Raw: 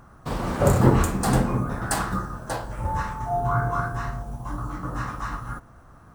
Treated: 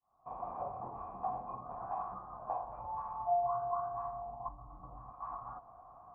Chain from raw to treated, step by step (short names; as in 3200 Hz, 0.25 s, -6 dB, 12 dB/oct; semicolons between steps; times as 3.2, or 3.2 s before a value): opening faded in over 1.13 s; 4.48–5.13 tilt -4 dB/oct; compressor 6:1, threshold -33 dBFS, peak gain reduction 20 dB; vocal tract filter a; gain +9 dB